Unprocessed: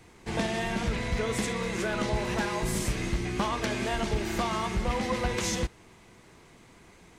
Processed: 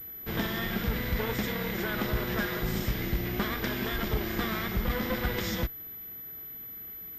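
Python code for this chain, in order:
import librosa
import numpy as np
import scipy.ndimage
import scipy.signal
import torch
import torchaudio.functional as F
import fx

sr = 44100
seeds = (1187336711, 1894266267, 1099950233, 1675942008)

y = fx.lower_of_two(x, sr, delay_ms=0.57)
y = fx.pwm(y, sr, carrier_hz=12000.0)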